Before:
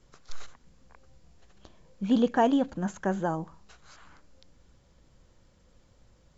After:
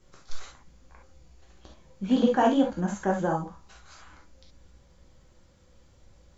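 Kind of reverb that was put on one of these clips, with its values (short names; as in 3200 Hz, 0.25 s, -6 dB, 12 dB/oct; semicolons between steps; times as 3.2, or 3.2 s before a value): non-linear reverb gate 90 ms flat, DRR -1.5 dB; gain -1 dB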